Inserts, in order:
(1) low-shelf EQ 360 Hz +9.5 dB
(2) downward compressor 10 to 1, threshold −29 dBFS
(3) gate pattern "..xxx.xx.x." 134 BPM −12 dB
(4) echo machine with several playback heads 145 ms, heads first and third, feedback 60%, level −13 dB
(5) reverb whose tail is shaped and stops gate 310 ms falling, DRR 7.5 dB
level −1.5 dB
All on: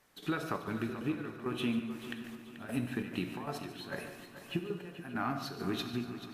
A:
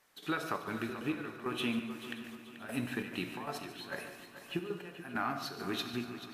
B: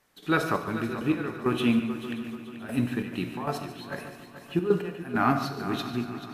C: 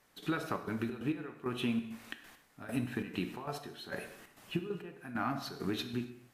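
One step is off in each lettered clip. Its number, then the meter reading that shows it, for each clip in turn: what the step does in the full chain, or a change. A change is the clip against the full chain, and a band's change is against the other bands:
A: 1, 125 Hz band −6.0 dB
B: 2, average gain reduction 6.0 dB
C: 4, echo-to-direct ratio −4.5 dB to −7.5 dB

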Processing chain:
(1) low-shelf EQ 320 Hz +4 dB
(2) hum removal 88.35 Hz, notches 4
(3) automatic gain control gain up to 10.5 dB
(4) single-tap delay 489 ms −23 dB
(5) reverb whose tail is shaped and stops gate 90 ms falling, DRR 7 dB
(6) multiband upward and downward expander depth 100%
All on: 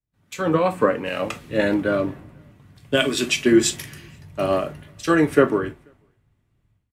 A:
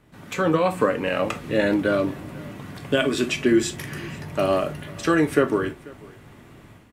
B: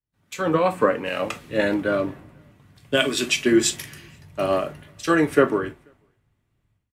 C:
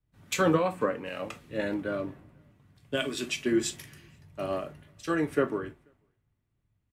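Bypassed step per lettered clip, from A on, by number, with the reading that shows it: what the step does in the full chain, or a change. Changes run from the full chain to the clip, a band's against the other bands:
6, 8 kHz band −5.0 dB
1, 125 Hz band −3.0 dB
3, change in integrated loudness −9.5 LU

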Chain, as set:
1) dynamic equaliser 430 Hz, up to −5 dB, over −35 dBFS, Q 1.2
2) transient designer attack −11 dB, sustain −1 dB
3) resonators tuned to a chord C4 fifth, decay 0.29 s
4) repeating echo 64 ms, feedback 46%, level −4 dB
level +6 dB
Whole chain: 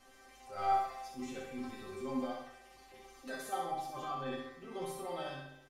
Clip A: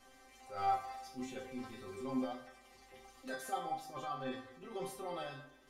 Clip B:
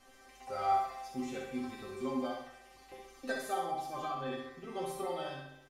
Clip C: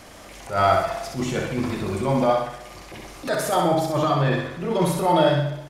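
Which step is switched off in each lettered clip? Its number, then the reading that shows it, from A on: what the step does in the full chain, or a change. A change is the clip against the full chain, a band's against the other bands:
4, echo-to-direct ratio −3.0 dB to none audible
2, change in momentary loudness spread −3 LU
3, 125 Hz band +10.5 dB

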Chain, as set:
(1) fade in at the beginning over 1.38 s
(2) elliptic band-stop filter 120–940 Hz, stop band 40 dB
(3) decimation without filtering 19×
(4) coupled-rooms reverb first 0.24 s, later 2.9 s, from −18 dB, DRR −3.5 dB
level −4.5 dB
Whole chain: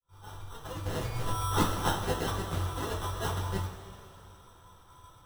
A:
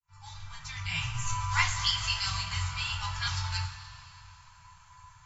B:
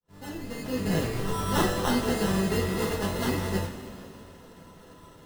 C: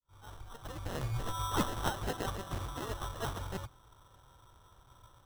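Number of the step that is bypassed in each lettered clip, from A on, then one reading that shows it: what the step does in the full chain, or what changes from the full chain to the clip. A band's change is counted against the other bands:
3, 500 Hz band −25.5 dB
2, 250 Hz band +6.5 dB
4, change in integrated loudness −5.0 LU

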